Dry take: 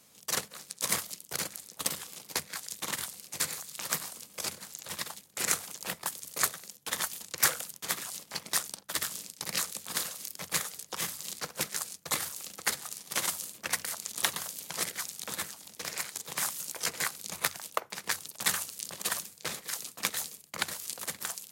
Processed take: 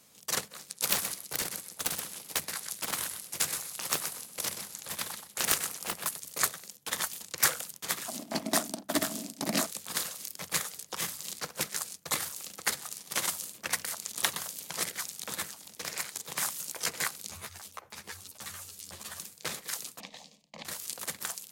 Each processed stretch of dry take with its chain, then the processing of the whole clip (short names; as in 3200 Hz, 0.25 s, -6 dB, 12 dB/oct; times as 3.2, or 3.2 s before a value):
0.74–6.18 bell 11000 Hz +9.5 dB 0.28 oct + feedback echo 0.126 s, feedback 16%, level -8 dB + Doppler distortion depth 0.99 ms
8.08–9.67 bell 230 Hz +9 dB 0.43 oct + small resonant body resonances 290/640 Hz, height 18 dB, ringing for 30 ms
17.29–19.2 bell 83 Hz +14.5 dB 0.71 oct + compressor 5:1, threshold -35 dBFS + ensemble effect
20–20.65 compressor 5:1, threshold -32 dBFS + air absorption 170 m + fixed phaser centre 380 Hz, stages 6
whole clip: dry